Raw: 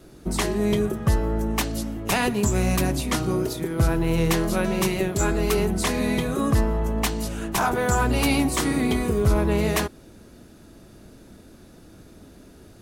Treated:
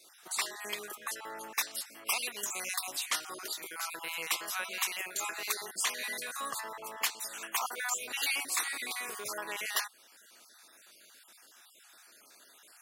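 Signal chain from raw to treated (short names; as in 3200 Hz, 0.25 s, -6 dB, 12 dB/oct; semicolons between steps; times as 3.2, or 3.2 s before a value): random spectral dropouts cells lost 35%; HPF 1400 Hz 12 dB/oct; high shelf 11000 Hz +4.5 dB; in parallel at +2.5 dB: compressor, threshold -41 dBFS, peak gain reduction 16.5 dB; on the sum: gain -5 dB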